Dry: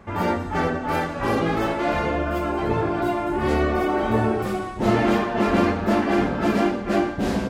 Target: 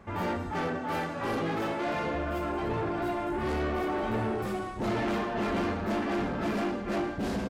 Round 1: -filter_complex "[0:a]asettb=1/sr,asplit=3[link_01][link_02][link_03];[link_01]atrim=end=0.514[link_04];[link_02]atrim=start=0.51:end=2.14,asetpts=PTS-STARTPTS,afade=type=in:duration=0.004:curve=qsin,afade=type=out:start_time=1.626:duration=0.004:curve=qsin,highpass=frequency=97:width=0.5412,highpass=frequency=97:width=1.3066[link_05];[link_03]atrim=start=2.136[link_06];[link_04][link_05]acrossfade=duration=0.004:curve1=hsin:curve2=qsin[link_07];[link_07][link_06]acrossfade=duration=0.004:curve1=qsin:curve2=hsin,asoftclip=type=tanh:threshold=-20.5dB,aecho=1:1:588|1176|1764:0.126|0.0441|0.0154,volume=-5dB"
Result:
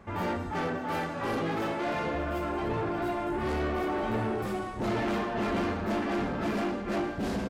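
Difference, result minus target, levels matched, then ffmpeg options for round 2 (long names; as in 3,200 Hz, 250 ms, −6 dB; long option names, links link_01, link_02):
echo-to-direct +12 dB
-filter_complex "[0:a]asettb=1/sr,asplit=3[link_01][link_02][link_03];[link_01]atrim=end=0.514[link_04];[link_02]atrim=start=0.51:end=2.14,asetpts=PTS-STARTPTS,afade=type=in:duration=0.004:curve=qsin,afade=type=out:start_time=1.626:duration=0.004:curve=qsin,highpass=frequency=97:width=0.5412,highpass=frequency=97:width=1.3066[link_05];[link_03]atrim=start=2.136[link_06];[link_04][link_05]acrossfade=duration=0.004:curve1=hsin:curve2=qsin[link_07];[link_07][link_06]acrossfade=duration=0.004:curve1=qsin:curve2=hsin,asoftclip=type=tanh:threshold=-20.5dB,aecho=1:1:588|1176:0.0316|0.0111,volume=-5dB"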